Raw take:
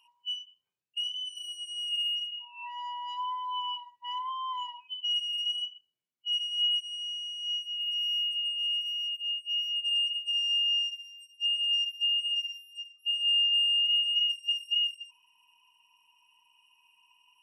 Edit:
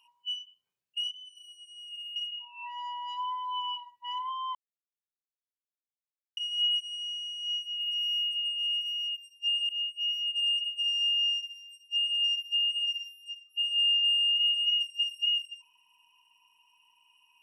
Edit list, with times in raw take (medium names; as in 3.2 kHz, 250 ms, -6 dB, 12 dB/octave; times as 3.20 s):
1.11–2.16 s: gain -11 dB
4.55–6.37 s: mute
11.16–11.67 s: copy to 9.18 s